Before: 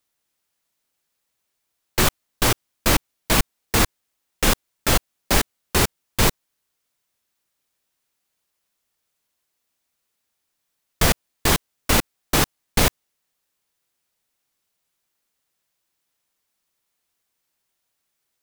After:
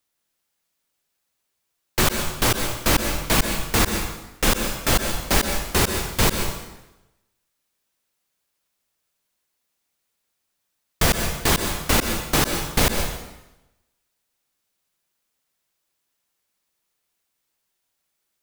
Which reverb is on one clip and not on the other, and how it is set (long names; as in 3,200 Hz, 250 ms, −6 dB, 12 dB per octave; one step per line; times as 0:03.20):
dense smooth reverb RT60 0.97 s, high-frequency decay 0.9×, pre-delay 110 ms, DRR 5 dB
level −1 dB